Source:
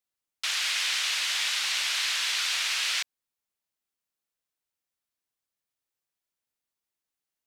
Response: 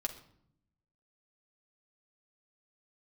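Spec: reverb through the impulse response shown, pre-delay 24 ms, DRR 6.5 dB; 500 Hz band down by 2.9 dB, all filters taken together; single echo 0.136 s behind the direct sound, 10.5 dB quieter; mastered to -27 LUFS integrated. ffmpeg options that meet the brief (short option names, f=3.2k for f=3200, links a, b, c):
-filter_complex "[0:a]equalizer=f=500:t=o:g=-4,aecho=1:1:136:0.299,asplit=2[a][b];[1:a]atrim=start_sample=2205,adelay=24[c];[b][c]afir=irnorm=-1:irlink=0,volume=-7.5dB[d];[a][d]amix=inputs=2:normalize=0,volume=-2dB"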